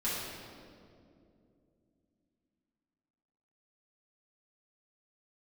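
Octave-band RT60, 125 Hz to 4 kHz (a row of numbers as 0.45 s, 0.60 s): 3.6 s, 3.9 s, 3.1 s, 2.0 s, 1.6 s, 1.5 s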